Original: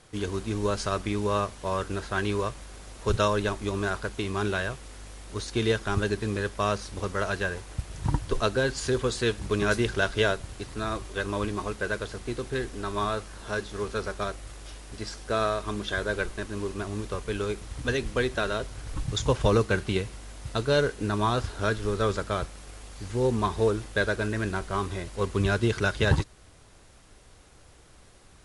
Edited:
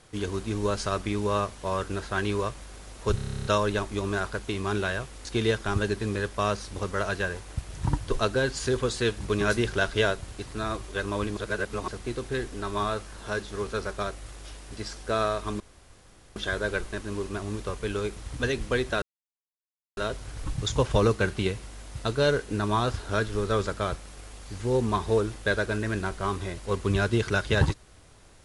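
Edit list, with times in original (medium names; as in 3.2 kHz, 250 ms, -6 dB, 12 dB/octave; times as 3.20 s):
3.15 s: stutter 0.03 s, 11 plays
4.95–5.46 s: delete
11.58–12.09 s: reverse
15.81 s: insert room tone 0.76 s
18.47 s: insert silence 0.95 s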